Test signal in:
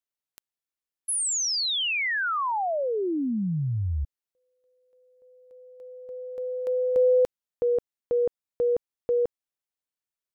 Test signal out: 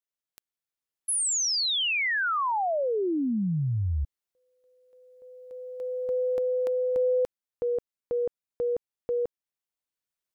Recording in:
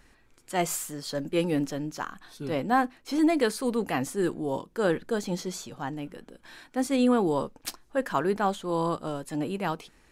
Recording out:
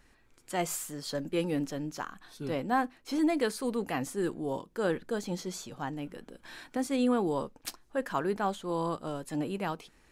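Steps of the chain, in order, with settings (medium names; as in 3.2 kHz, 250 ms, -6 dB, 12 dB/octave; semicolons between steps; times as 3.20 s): recorder AGC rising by 5.9 dB/s; trim -4.5 dB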